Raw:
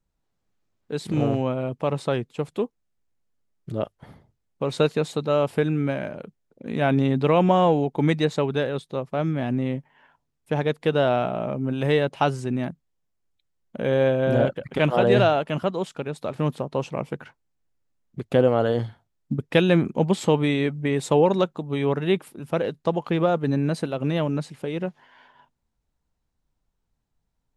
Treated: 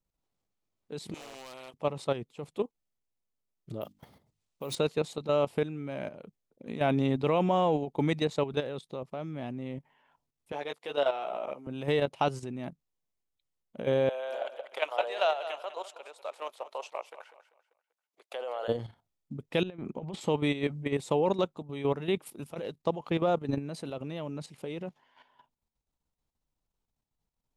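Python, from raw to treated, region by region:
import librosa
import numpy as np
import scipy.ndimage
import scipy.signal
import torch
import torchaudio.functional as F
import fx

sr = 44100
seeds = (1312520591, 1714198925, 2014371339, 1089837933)

y = fx.chain(x, sr, fx.highpass(hz=550.0, slope=12),
    fx.clip_hard(threshold_db=-25.5),
    fx.spectral_comp(ratio=2.0), at=(1.14, 1.74))
y = fx.chain(y, sr, fx.high_shelf(hz=3800.0, db=9.5),
    fx.hum_notches(base_hz=50, count=6),
    fx.resample_bad(factor=3, down='none', up='hold'), at=(3.81, 4.75))
y = fx.chain(y, sr, fx.highpass(hz=500.0, slope=12),
    fx.doubler(ms=14.0, db=-5), at=(10.52, 11.67))
y = fx.chain(y, sr, fx.highpass(hz=600.0, slope=24),
    fx.echo_feedback(ms=195, feedback_pct=39, wet_db=-13.0), at=(14.09, 18.68))
y = fx.chain(y, sr, fx.lowpass(hz=1900.0, slope=6),
    fx.low_shelf(hz=490.0, db=-3.0),
    fx.over_compress(threshold_db=-26.0, ratio=-0.5), at=(19.63, 20.21))
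y = fx.chain(y, sr, fx.high_shelf(hz=3600.0, db=6.0),
    fx.over_compress(threshold_db=-26.0, ratio=-0.5), at=(22.26, 22.71))
y = fx.peak_eq(y, sr, hz=1600.0, db=-6.0, octaves=0.51)
y = fx.level_steps(y, sr, step_db=11)
y = fx.low_shelf(y, sr, hz=280.0, db=-5.0)
y = y * librosa.db_to_amplitude(-1.5)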